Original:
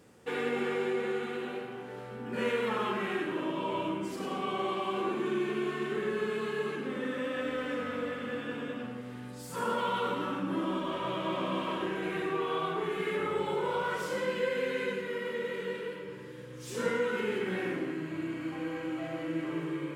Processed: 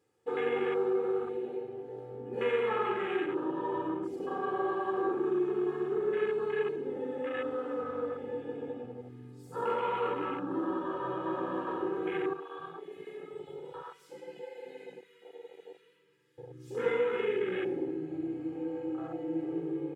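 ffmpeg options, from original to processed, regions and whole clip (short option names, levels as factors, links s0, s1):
-filter_complex "[0:a]asettb=1/sr,asplit=3[s0][s1][s2];[s0]atrim=end=12.334[s3];[s1]atrim=start=12.33:end=16.38,asetpts=PTS-STARTPTS,afade=t=in:d=0.004:c=qsin,afade=t=out:st=4.046:d=0.004:c=qsin,highpass=f=130:w=0.5412,highpass=f=130:w=1.3066,equalizer=f=520:t=o:w=2.9:g=-13.5,bandreject=f=60:t=h:w=6,bandreject=f=120:t=h:w=6,bandreject=f=180:t=h:w=6,bandreject=f=240:t=h:w=6,bandreject=f=300:t=h:w=6[s4];[s2]atrim=start=16.376[s5];[s3][s4]acrossfade=d=0.004:c1=hsin:c2=qsin[s6];[s6][s5]acrossfade=d=0.004:c1=qsin:c2=hsin,afwtdn=0.0158,highpass=88,aecho=1:1:2.4:0.72,volume=0.841"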